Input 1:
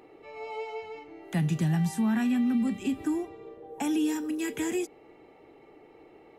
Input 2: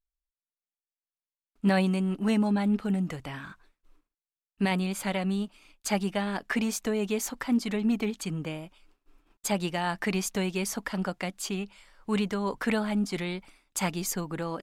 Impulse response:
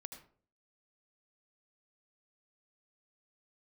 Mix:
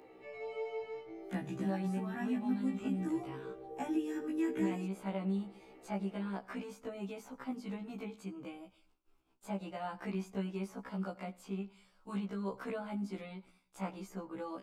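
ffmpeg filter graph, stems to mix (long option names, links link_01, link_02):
-filter_complex "[0:a]volume=-2.5dB,asplit=2[link_01][link_02];[link_02]volume=-8.5dB[link_03];[1:a]equalizer=frequency=1800:width=5.2:gain=-9,volume=-8dB,asplit=2[link_04][link_05];[link_05]volume=-8.5dB[link_06];[2:a]atrim=start_sample=2205[link_07];[link_03][link_06]amix=inputs=2:normalize=0[link_08];[link_08][link_07]afir=irnorm=-1:irlink=0[link_09];[link_01][link_04][link_09]amix=inputs=3:normalize=0,acrossover=split=140|2100[link_10][link_11][link_12];[link_10]acompressor=threshold=-56dB:ratio=4[link_13];[link_11]acompressor=threshold=-30dB:ratio=4[link_14];[link_12]acompressor=threshold=-60dB:ratio=4[link_15];[link_13][link_14][link_15]amix=inputs=3:normalize=0,afftfilt=real='re*1.73*eq(mod(b,3),0)':imag='im*1.73*eq(mod(b,3),0)':win_size=2048:overlap=0.75"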